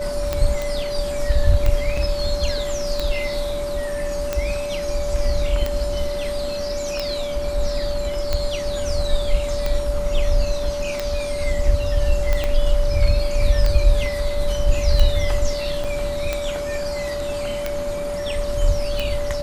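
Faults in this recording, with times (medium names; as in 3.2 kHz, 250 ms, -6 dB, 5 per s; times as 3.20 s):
tick 45 rpm -8 dBFS
whine 580 Hz -24 dBFS
0.62 s: pop
1.97 s: dropout 4 ms
12.44 s: pop -9 dBFS
15.84–15.85 s: dropout 5.8 ms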